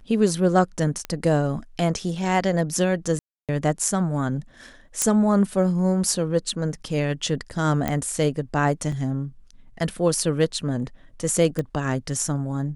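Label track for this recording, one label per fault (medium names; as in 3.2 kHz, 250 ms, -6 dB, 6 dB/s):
1.050000	1.050000	pop -15 dBFS
3.190000	3.490000	dropout 297 ms
5.020000	5.020000	pop -5 dBFS
7.880000	7.880000	pop -11 dBFS
8.920000	8.920000	dropout 3.6 ms
11.590000	11.590000	pop -14 dBFS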